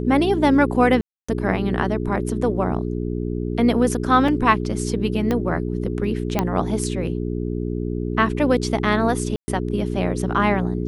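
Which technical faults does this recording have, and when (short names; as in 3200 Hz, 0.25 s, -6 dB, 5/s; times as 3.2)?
hum 60 Hz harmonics 7 -25 dBFS
1.01–1.28 gap 0.275 s
4.28 gap 3.7 ms
5.31 pop -10 dBFS
6.39 pop -6 dBFS
9.36–9.48 gap 0.12 s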